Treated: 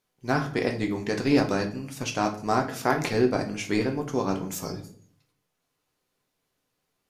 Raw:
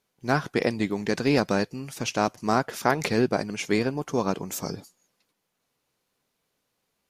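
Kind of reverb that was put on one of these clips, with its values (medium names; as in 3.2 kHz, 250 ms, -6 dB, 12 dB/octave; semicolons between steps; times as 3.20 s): simulated room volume 48 m³, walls mixed, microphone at 0.45 m; trim -3 dB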